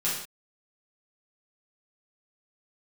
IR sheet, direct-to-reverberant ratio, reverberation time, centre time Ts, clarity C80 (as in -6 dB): -9.0 dB, not exponential, 50 ms, 6.5 dB